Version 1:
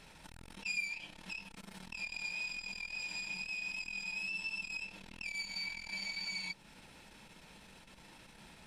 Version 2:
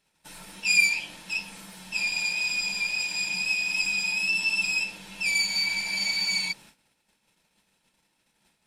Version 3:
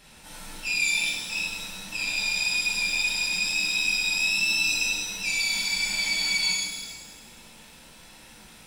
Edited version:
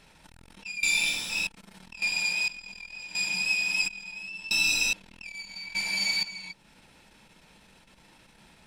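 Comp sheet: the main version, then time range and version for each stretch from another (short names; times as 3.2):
1
0.83–1.47 from 3
2.02–2.48 from 2
3.15–3.88 from 2
4.51–4.93 from 3
5.75–6.23 from 2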